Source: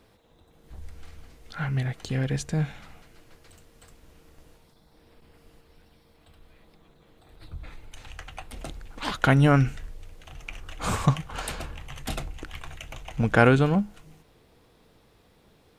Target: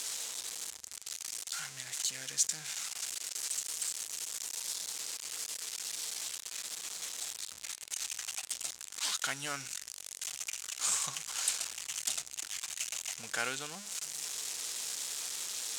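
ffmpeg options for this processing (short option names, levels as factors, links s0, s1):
-af "aeval=exprs='val(0)+0.5*0.0473*sgn(val(0))':c=same,bandpass=f=7200:t=q:w=2:csg=0,volume=2"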